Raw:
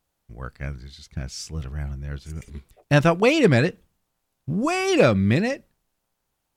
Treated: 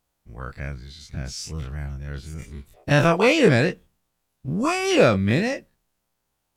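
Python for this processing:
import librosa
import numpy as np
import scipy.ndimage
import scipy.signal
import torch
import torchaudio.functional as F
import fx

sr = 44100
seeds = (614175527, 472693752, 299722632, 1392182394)

y = fx.spec_dilate(x, sr, span_ms=60)
y = F.gain(torch.from_numpy(y), -3.0).numpy()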